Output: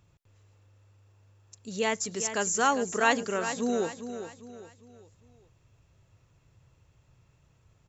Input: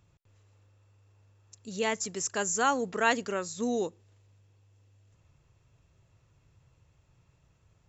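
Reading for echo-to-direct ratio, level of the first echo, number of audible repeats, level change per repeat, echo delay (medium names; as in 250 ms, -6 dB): -9.5 dB, -10.0 dB, 4, -8.0 dB, 402 ms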